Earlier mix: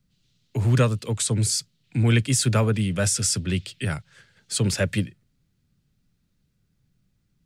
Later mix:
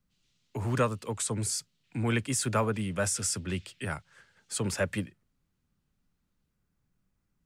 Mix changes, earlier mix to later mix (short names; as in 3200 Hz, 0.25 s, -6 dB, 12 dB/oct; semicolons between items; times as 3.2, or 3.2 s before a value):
speech -5.5 dB; master: add ten-band EQ 125 Hz -7 dB, 1000 Hz +7 dB, 4000 Hz -6 dB